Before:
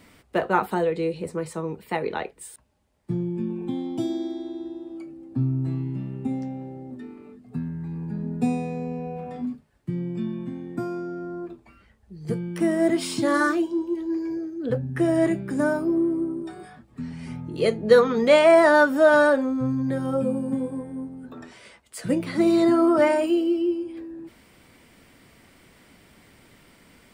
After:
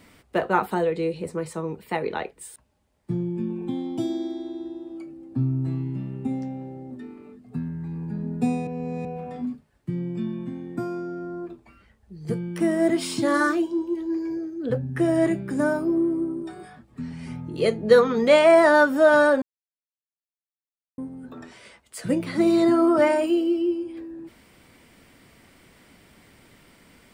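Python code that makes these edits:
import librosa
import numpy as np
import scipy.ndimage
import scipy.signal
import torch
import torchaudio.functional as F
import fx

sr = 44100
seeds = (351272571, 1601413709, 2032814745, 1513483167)

y = fx.edit(x, sr, fx.reverse_span(start_s=8.67, length_s=0.38),
    fx.silence(start_s=19.42, length_s=1.56), tone=tone)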